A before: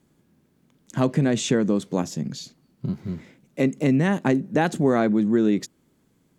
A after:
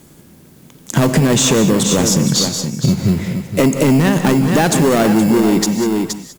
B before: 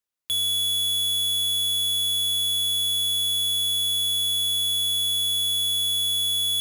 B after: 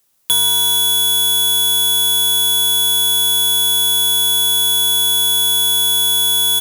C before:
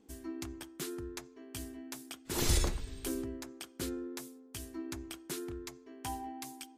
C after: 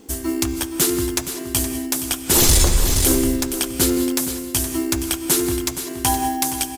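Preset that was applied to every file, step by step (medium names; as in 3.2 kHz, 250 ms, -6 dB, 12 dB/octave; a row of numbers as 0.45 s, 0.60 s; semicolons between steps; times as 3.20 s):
peaking EQ 230 Hz -3.5 dB 0.86 oct; in parallel at -10.5 dB: sample-and-hold 18×; on the sum: saturation -19 dBFS; treble shelf 5.2 kHz +10.5 dB; on a send: delay 470 ms -11 dB; on the sum: peak limiter -20.5 dBFS; gated-style reverb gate 220 ms rising, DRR 10 dB; compression, threshold -27 dBFS; peak normalisation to -3 dBFS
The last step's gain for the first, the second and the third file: +17.5 dB, +17.5 dB, +17.5 dB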